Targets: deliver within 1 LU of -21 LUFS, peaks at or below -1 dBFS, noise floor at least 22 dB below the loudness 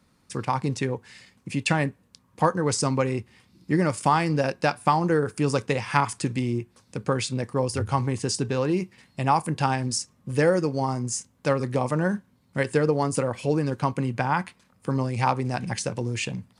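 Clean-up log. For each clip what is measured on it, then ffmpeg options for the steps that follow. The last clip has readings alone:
loudness -26.0 LUFS; peak -3.5 dBFS; loudness target -21.0 LUFS
-> -af "volume=5dB,alimiter=limit=-1dB:level=0:latency=1"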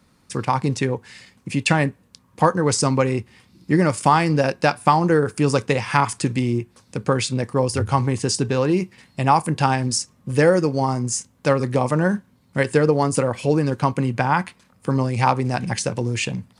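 loudness -21.0 LUFS; peak -1.0 dBFS; noise floor -59 dBFS

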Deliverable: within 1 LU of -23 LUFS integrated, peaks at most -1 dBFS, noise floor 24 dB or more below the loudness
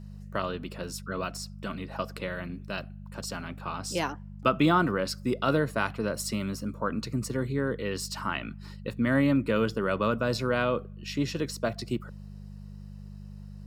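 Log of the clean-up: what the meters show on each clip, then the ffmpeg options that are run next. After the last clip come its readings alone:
hum 50 Hz; harmonics up to 200 Hz; hum level -41 dBFS; loudness -30.0 LUFS; peak -9.0 dBFS; loudness target -23.0 LUFS
-> -af "bandreject=f=50:t=h:w=4,bandreject=f=100:t=h:w=4,bandreject=f=150:t=h:w=4,bandreject=f=200:t=h:w=4"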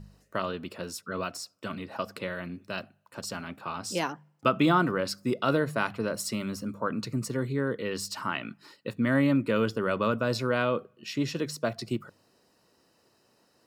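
hum none; loudness -30.0 LUFS; peak -9.0 dBFS; loudness target -23.0 LUFS
-> -af "volume=7dB"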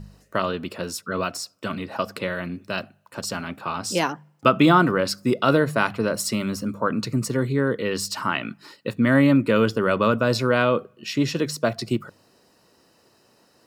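loudness -23.0 LUFS; peak -2.0 dBFS; noise floor -60 dBFS

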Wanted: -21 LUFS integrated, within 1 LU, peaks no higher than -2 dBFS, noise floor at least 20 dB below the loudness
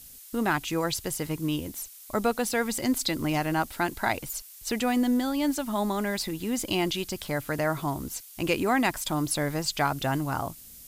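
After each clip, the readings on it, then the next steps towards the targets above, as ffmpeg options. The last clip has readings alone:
noise floor -48 dBFS; noise floor target -49 dBFS; loudness -28.5 LUFS; peak -12.5 dBFS; loudness target -21.0 LUFS
-> -af "afftdn=nr=6:nf=-48"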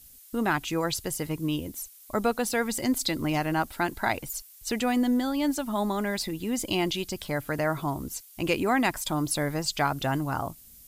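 noise floor -52 dBFS; loudness -28.5 LUFS; peak -13.0 dBFS; loudness target -21.0 LUFS
-> -af "volume=7.5dB"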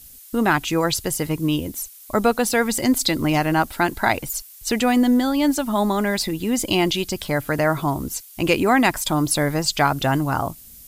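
loudness -21.0 LUFS; peak -5.5 dBFS; noise floor -44 dBFS

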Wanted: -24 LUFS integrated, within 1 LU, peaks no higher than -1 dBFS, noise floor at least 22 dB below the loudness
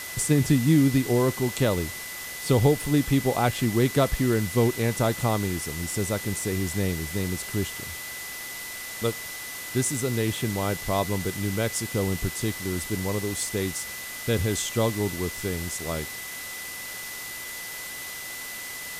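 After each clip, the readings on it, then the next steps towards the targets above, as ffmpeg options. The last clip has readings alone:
steady tone 2000 Hz; tone level -38 dBFS; noise floor -37 dBFS; noise floor target -49 dBFS; loudness -26.5 LUFS; peak -8.0 dBFS; loudness target -24.0 LUFS
-> -af "bandreject=f=2k:w=30"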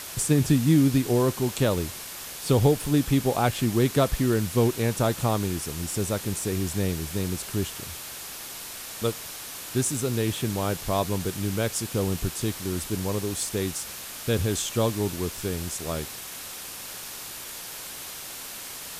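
steady tone none; noise floor -39 dBFS; noise floor target -49 dBFS
-> -af "afftdn=nr=10:nf=-39"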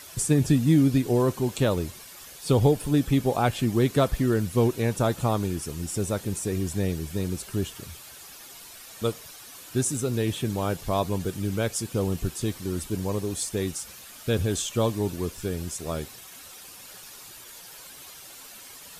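noise floor -45 dBFS; noise floor target -49 dBFS
-> -af "afftdn=nr=6:nf=-45"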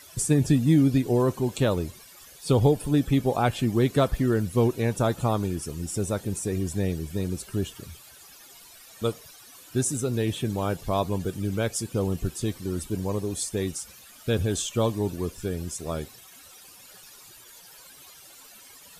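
noise floor -50 dBFS; loudness -26.5 LUFS; peak -8.5 dBFS; loudness target -24.0 LUFS
-> -af "volume=2.5dB"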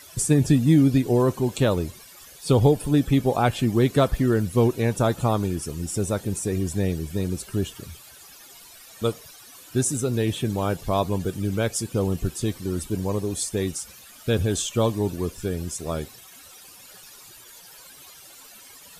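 loudness -24.0 LUFS; peak -6.0 dBFS; noise floor -47 dBFS

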